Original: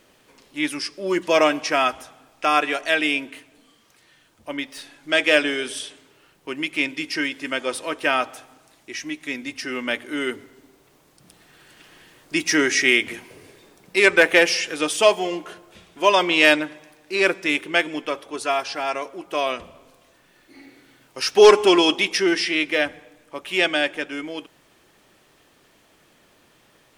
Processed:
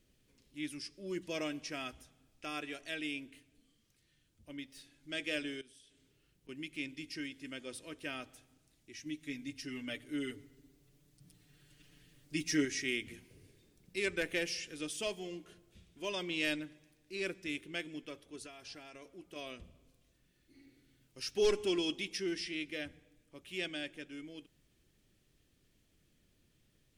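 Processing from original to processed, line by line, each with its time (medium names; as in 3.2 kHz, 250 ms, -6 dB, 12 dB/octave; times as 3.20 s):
5.61–6.49 s: compression 2.5:1, threshold -49 dBFS
9.05–12.65 s: comb 6.9 ms, depth 92%
18.38–19.36 s: compression, threshold -25 dBFS
whole clip: amplifier tone stack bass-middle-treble 10-0-1; trim +5 dB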